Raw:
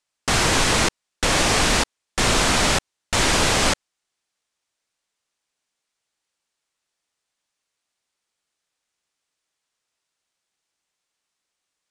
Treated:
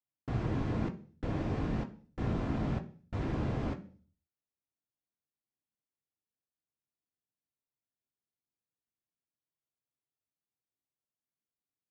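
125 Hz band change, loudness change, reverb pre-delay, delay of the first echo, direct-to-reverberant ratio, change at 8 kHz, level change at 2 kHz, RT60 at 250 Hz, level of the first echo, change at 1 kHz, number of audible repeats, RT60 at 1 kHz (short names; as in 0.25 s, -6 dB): -6.0 dB, -16.5 dB, 3 ms, none, 4.0 dB, under -40 dB, -27.0 dB, 0.55 s, none, -20.5 dB, none, 0.40 s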